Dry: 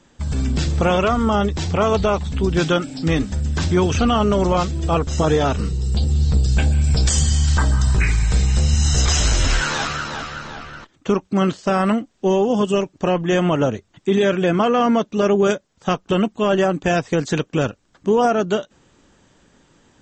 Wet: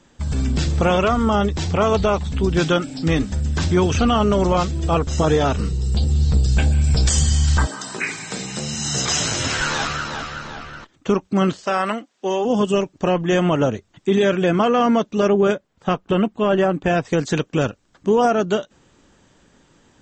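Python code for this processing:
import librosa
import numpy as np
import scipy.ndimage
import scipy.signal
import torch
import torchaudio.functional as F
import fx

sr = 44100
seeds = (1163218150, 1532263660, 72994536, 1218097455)

y = fx.highpass(x, sr, hz=fx.line((7.65, 290.0), (9.59, 98.0)), slope=24, at=(7.65, 9.59), fade=0.02)
y = fx.weighting(y, sr, curve='A', at=(11.64, 12.44), fade=0.02)
y = fx.peak_eq(y, sr, hz=6300.0, db=-9.5, octaves=1.4, at=(15.28, 17.05))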